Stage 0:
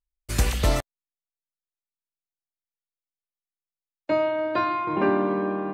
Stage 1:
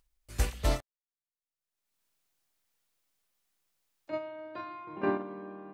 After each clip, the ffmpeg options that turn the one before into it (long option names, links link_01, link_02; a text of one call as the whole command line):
ffmpeg -i in.wav -af "agate=range=-12dB:threshold=-20dB:ratio=16:detection=peak,acompressor=mode=upward:threshold=-47dB:ratio=2.5,volume=-5.5dB" out.wav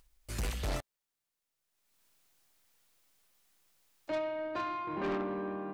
ffmpeg -i in.wav -af "alimiter=level_in=2dB:limit=-24dB:level=0:latency=1:release=66,volume=-2dB,asoftclip=type=tanh:threshold=-38dB,volume=8dB" out.wav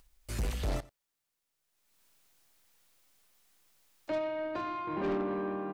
ffmpeg -i in.wav -filter_complex "[0:a]acrossover=split=760[link_01][link_02];[link_02]alimiter=level_in=12.5dB:limit=-24dB:level=0:latency=1:release=111,volume=-12.5dB[link_03];[link_01][link_03]amix=inputs=2:normalize=0,aecho=1:1:89:0.0891,volume=2.5dB" out.wav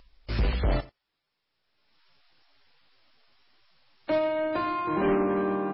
ffmpeg -i in.wav -af "volume=8dB" -ar 16000 -c:a libmp3lame -b:a 16k out.mp3